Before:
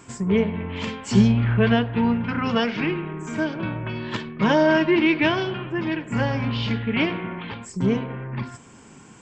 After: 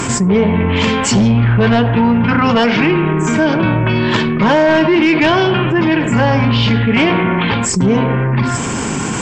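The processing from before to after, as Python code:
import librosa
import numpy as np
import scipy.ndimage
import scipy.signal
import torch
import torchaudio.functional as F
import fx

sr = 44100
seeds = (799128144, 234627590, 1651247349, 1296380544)

p1 = fx.dynamic_eq(x, sr, hz=810.0, q=1.2, threshold_db=-33.0, ratio=4.0, max_db=4)
p2 = fx.fold_sine(p1, sr, drive_db=8, ceiling_db=-4.0)
p3 = p1 + (p2 * 10.0 ** (-5.5 / 20.0))
p4 = fx.env_flatten(p3, sr, amount_pct=70)
y = p4 * 10.0 ** (-3.5 / 20.0)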